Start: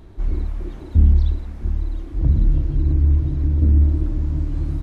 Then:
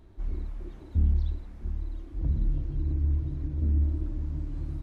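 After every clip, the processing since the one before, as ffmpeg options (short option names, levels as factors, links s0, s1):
-af "flanger=delay=3.1:depth=7:regen=-74:speed=0.5:shape=sinusoidal,volume=0.473"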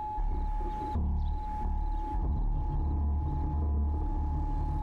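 -af "aeval=exprs='val(0)+0.00794*sin(2*PI*850*n/s)':c=same,acompressor=threshold=0.0126:ratio=2.5,aeval=exprs='0.0422*sin(PI/2*1.58*val(0)/0.0422)':c=same,volume=1.19"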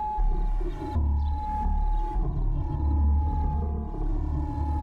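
-filter_complex "[0:a]asplit=2[s0][s1];[s1]adelay=2,afreqshift=-0.57[s2];[s0][s2]amix=inputs=2:normalize=1,volume=2.37"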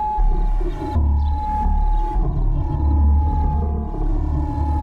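-af "equalizer=f=640:t=o:w=0.42:g=2.5,volume=2.37"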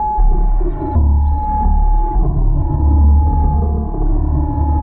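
-af "lowpass=1200,volume=1.88"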